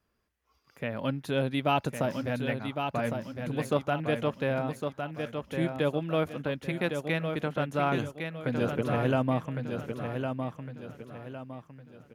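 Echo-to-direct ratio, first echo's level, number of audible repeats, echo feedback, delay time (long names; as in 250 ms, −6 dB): −5.5 dB, −6.0 dB, 4, 36%, 1,108 ms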